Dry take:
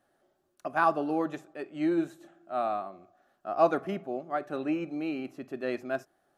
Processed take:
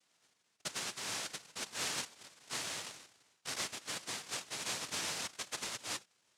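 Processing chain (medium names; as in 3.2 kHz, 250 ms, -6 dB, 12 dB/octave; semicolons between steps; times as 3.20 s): Chebyshev band-pass 220–1700 Hz, order 2; compression 16:1, threshold -35 dBFS, peak gain reduction 18.5 dB; noise-vocoded speech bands 1; trim -1.5 dB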